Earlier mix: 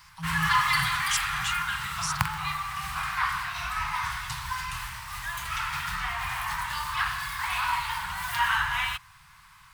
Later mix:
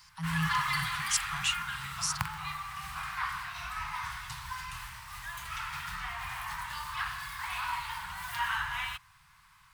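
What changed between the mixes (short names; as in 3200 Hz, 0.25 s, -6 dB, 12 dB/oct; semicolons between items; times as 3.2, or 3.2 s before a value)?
speech: remove Chebyshev band-stop 1200–3100 Hz; background -7.0 dB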